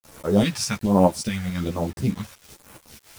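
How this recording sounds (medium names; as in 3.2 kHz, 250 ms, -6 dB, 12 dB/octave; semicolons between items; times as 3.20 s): phasing stages 2, 1.2 Hz, lowest notch 290–4100 Hz; tremolo saw up 4.7 Hz, depth 55%; a quantiser's noise floor 8-bit, dither none; a shimmering, thickened sound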